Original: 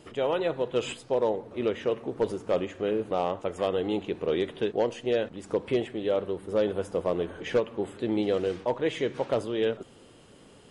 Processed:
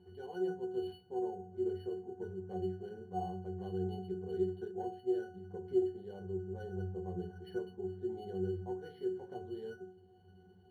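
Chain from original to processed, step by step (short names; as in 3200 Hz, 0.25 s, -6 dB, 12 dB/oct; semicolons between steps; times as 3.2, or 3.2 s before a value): upward compressor, threshold -44 dBFS; octave resonator F#, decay 0.42 s; on a send at -6 dB: reverb RT60 0.25 s, pre-delay 3 ms; on the sum: decimation joined by straight lines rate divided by 6×; gain +4 dB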